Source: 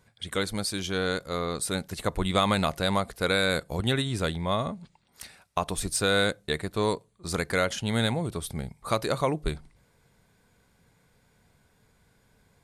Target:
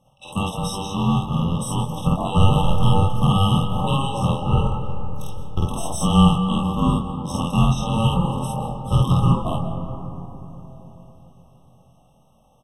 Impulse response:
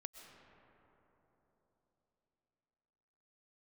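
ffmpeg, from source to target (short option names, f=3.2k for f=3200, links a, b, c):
-filter_complex "[0:a]aeval=exprs='val(0)*sin(2*PI*680*n/s)':c=same,lowshelf=f=240:t=q:w=1.5:g=12.5,asplit=2[a][b];[b]adelay=23,volume=-5dB[c];[a][c]amix=inputs=2:normalize=0,asplit=2[d][e];[1:a]atrim=start_sample=2205,adelay=50[f];[e][f]afir=irnorm=-1:irlink=0,volume=6dB[g];[d][g]amix=inputs=2:normalize=0,afftfilt=real='re*eq(mod(floor(b*sr/1024/1300),2),0)':imag='im*eq(mod(floor(b*sr/1024/1300),2),0)':win_size=1024:overlap=0.75,volume=1.5dB"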